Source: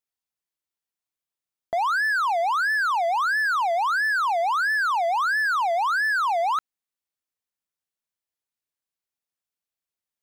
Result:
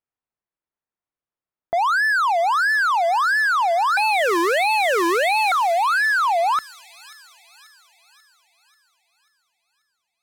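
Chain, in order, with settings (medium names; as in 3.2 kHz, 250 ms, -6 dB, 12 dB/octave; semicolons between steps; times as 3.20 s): 3.97–5.52 s: cycle switcher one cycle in 2, inverted; level-controlled noise filter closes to 1.6 kHz, open at -21.5 dBFS; feedback echo behind a high-pass 538 ms, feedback 53%, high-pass 4.9 kHz, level -5.5 dB; trim +4 dB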